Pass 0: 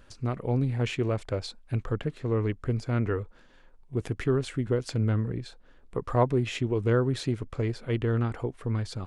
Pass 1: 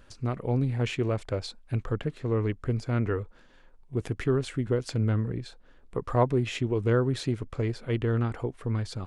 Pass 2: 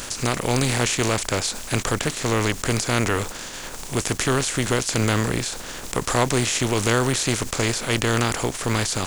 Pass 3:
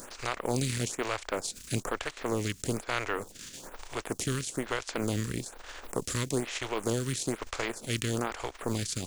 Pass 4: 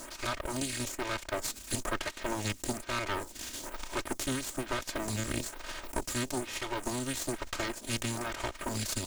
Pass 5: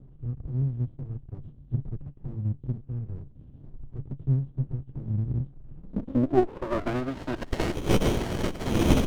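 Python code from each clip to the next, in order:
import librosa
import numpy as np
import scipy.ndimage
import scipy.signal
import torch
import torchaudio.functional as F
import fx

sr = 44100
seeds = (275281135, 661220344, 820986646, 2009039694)

y1 = x
y2 = fx.spec_flatten(y1, sr, power=0.48)
y2 = fx.peak_eq(y2, sr, hz=7000.0, db=9.0, octaves=0.94)
y2 = fx.env_flatten(y2, sr, amount_pct=50)
y2 = y2 * librosa.db_to_amplitude(1.5)
y3 = fx.transient(y2, sr, attack_db=2, sustain_db=-10)
y3 = fx.stagger_phaser(y3, sr, hz=1.1)
y3 = y3 * librosa.db_to_amplitude(-7.0)
y4 = fx.lower_of_two(y3, sr, delay_ms=3.2)
y4 = fx.rider(y4, sr, range_db=5, speed_s=0.5)
y4 = y4 * librosa.db_to_amplitude(1.0)
y5 = fx.freq_compress(y4, sr, knee_hz=2500.0, ratio=4.0)
y5 = fx.filter_sweep_lowpass(y5, sr, from_hz=140.0, to_hz=3000.0, start_s=5.7, end_s=7.82, q=7.6)
y5 = fx.running_max(y5, sr, window=33)
y5 = y5 * librosa.db_to_amplitude(4.0)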